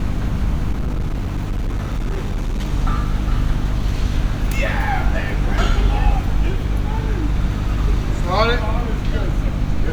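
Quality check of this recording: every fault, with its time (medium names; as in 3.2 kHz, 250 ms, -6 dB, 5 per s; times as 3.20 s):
hum 50 Hz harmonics 6 -23 dBFS
0.71–2.70 s: clipped -17.5 dBFS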